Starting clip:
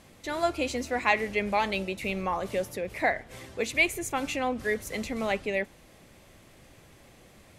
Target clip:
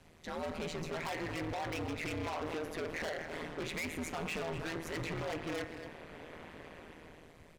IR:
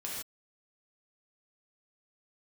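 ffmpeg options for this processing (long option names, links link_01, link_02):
-filter_complex "[0:a]acrossover=split=260|3500[link_01][link_02][link_03];[link_02]dynaudnorm=framelen=170:gausssize=11:maxgain=15dB[link_04];[link_01][link_04][link_03]amix=inputs=3:normalize=0,highshelf=frequency=3800:gain=-8,acompressor=threshold=-19dB:ratio=6,asoftclip=type=tanh:threshold=-28.5dB,bandreject=frequency=60.37:width_type=h:width=4,bandreject=frequency=120.74:width_type=h:width=4,bandreject=frequency=181.11:width_type=h:width=4,bandreject=frequency=241.48:width_type=h:width=4,bandreject=frequency=301.85:width_type=h:width=4,bandreject=frequency=362.22:width_type=h:width=4,bandreject=frequency=422.59:width_type=h:width=4,bandreject=frequency=482.96:width_type=h:width=4,bandreject=frequency=543.33:width_type=h:width=4,bandreject=frequency=603.7:width_type=h:width=4,bandreject=frequency=664.07:width_type=h:width=4,bandreject=frequency=724.44:width_type=h:width=4,bandreject=frequency=784.81:width_type=h:width=4,bandreject=frequency=845.18:width_type=h:width=4,bandreject=frequency=905.55:width_type=h:width=4,bandreject=frequency=965.92:width_type=h:width=4,bandreject=frequency=1026.29:width_type=h:width=4,bandreject=frequency=1086.66:width_type=h:width=4,bandreject=frequency=1147.03:width_type=h:width=4,bandreject=frequency=1207.4:width_type=h:width=4,bandreject=frequency=1267.77:width_type=h:width=4,bandreject=frequency=1328.14:width_type=h:width=4,bandreject=frequency=1388.51:width_type=h:width=4,bandreject=frequency=1448.88:width_type=h:width=4,bandreject=frequency=1509.25:width_type=h:width=4,bandreject=frequency=1569.62:width_type=h:width=4,bandreject=frequency=1629.99:width_type=h:width=4,bandreject=frequency=1690.36:width_type=h:width=4,bandreject=frequency=1750.73:width_type=h:width=4,bandreject=frequency=1811.1:width_type=h:width=4,bandreject=frequency=1871.47:width_type=h:width=4,bandreject=frequency=1931.84:width_type=h:width=4,bandreject=frequency=1992.21:width_type=h:width=4,bandreject=frequency=2052.58:width_type=h:width=4,bandreject=frequency=2112.95:width_type=h:width=4,bandreject=frequency=2173.32:width_type=h:width=4,bandreject=frequency=2233.69:width_type=h:width=4,bandreject=frequency=2294.06:width_type=h:width=4,bandreject=frequency=2354.43:width_type=h:width=4,asplit=2[link_05][link_06];[link_06]adelay=240,highpass=300,lowpass=3400,asoftclip=type=hard:threshold=-33.5dB,volume=-8dB[link_07];[link_05][link_07]amix=inputs=2:normalize=0,afreqshift=-95,asplit=2[link_08][link_09];[1:a]atrim=start_sample=2205,adelay=13[link_10];[link_09][link_10]afir=irnorm=-1:irlink=0,volume=-16.5dB[link_11];[link_08][link_11]amix=inputs=2:normalize=0,tremolo=f=160:d=0.947,volume=33dB,asoftclip=hard,volume=-33dB"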